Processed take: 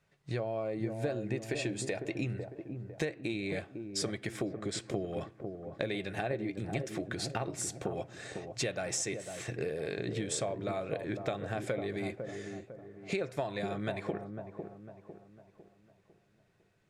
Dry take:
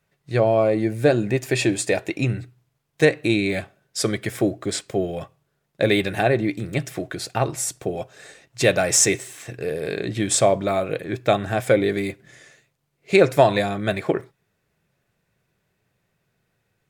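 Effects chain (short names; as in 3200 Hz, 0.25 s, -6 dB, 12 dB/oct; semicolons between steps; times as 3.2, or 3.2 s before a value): LPF 8500 Hz 12 dB/oct; compressor 6:1, threshold -31 dBFS, peak gain reduction 20 dB; dark delay 0.502 s, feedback 42%, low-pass 940 Hz, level -6 dB; gain -2 dB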